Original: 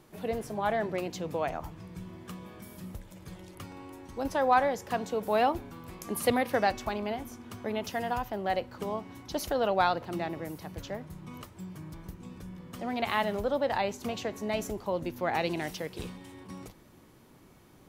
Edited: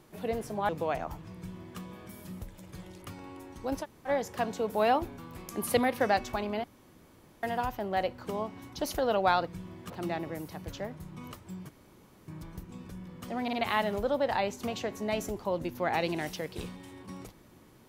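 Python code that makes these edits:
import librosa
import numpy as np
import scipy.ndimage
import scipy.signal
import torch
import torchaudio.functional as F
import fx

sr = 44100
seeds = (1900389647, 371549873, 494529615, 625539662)

y = fx.edit(x, sr, fx.cut(start_s=0.69, length_s=0.53),
    fx.duplicate(start_s=1.89, length_s=0.43, to_s=10.0),
    fx.room_tone_fill(start_s=4.36, length_s=0.25, crossfade_s=0.06),
    fx.room_tone_fill(start_s=7.17, length_s=0.79),
    fx.insert_room_tone(at_s=11.79, length_s=0.59),
    fx.stutter(start_s=12.94, slice_s=0.05, count=3), tone=tone)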